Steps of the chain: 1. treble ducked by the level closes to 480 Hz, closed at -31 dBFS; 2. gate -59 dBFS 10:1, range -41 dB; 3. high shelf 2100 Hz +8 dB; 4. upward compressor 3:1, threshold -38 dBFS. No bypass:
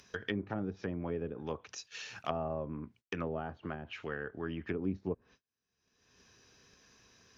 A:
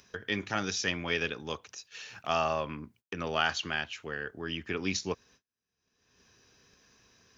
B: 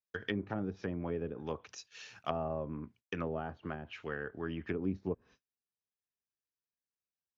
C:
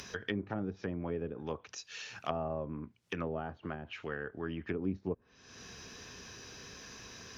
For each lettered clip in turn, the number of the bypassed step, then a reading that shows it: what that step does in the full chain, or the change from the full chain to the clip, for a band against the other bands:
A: 1, 4 kHz band +11.5 dB; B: 4, 4 kHz band -2.0 dB; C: 2, momentary loudness spread change +5 LU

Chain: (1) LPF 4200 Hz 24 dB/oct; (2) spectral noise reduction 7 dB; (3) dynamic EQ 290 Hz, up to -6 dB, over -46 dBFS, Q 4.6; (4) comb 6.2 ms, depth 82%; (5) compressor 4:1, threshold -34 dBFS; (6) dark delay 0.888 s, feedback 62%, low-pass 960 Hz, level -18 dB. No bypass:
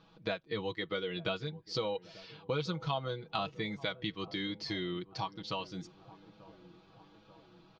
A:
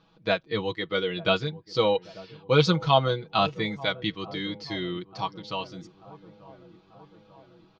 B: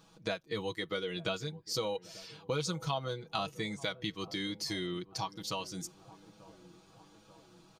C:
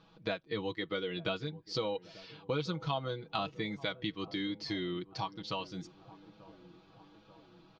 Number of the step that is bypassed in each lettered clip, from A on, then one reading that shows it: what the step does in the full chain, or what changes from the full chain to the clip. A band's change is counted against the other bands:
5, mean gain reduction 7.0 dB; 1, momentary loudness spread change -4 LU; 3, 250 Hz band +1.5 dB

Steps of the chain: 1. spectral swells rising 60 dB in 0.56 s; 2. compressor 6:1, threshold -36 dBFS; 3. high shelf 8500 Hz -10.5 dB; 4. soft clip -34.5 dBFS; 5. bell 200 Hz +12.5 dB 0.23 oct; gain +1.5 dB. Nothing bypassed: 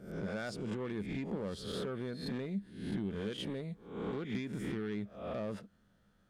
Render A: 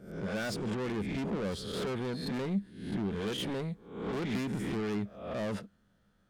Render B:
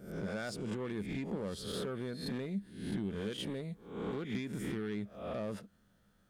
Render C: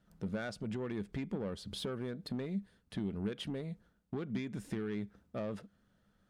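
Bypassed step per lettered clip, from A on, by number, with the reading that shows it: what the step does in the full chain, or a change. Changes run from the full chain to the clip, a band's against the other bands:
2, mean gain reduction 8.5 dB; 3, 8 kHz band +4.5 dB; 1, 1 kHz band -2.0 dB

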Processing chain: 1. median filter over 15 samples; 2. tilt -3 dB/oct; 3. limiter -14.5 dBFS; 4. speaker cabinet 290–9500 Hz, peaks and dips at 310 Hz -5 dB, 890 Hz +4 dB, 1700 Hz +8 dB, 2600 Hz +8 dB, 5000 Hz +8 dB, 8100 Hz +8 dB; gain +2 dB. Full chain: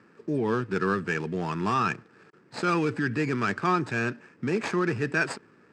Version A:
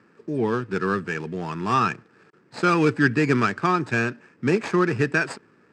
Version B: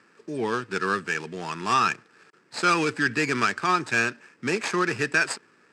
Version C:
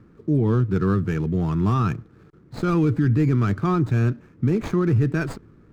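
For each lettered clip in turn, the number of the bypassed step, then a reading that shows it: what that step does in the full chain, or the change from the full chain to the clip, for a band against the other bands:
3, mean gain reduction 2.5 dB; 2, 125 Hz band -9.5 dB; 4, 125 Hz band +13.0 dB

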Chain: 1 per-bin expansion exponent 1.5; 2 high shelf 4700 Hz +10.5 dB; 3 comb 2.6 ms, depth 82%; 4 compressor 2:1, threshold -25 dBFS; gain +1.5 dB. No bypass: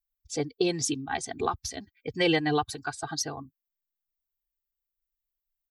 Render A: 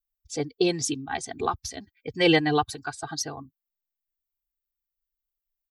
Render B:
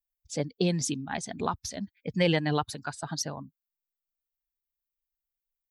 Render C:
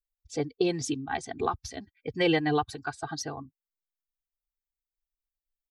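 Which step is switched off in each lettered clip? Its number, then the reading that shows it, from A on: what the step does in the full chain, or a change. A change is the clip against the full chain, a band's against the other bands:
4, momentary loudness spread change +4 LU; 3, 125 Hz band +7.5 dB; 2, 8 kHz band -6.5 dB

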